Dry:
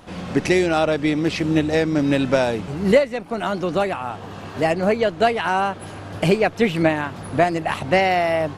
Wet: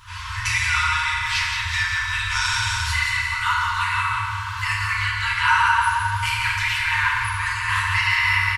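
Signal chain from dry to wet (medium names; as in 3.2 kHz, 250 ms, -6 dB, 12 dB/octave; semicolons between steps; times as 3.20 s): 2.30–2.91 s: peaking EQ 6.8 kHz +11.5 dB 1.7 oct; feedback delay 176 ms, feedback 55%, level -6 dB; peak limiter -10.5 dBFS, peak gain reduction 7.5 dB; FDN reverb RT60 1.9 s, low-frequency decay 1.45×, high-frequency decay 0.45×, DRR -8 dB; FFT band-reject 110–910 Hz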